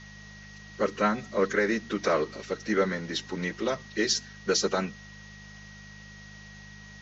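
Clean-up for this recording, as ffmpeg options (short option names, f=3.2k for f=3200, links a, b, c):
-af "bandreject=f=51.3:t=h:w=4,bandreject=f=102.6:t=h:w=4,bandreject=f=153.9:t=h:w=4,bandreject=f=205.2:t=h:w=4,bandreject=f=1.9k:w=30,afftdn=nr=26:nf=-47"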